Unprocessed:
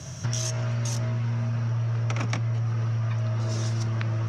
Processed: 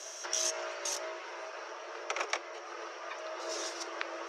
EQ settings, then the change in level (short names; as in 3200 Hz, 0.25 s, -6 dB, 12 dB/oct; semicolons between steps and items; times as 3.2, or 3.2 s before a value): steep high-pass 350 Hz 96 dB/oct; 0.0 dB